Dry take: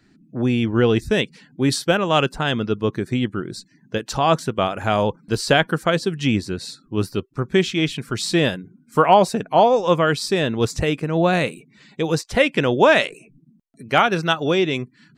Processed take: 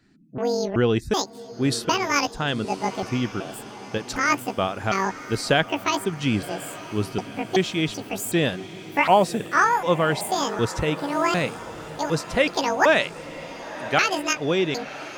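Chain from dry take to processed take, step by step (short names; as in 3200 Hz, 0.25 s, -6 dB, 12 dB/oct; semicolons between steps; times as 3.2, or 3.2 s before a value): trilling pitch shifter +11 st, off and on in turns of 0.378 s; diffused feedback echo 1.023 s, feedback 54%, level -14.5 dB; gain -3.5 dB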